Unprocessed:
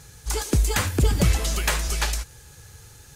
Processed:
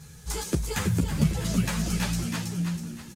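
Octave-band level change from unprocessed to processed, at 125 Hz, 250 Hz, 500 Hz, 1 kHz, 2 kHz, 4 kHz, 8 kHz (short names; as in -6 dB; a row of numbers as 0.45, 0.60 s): -1.5, +3.5, -5.5, -6.0, -6.5, -6.0, -6.0 dB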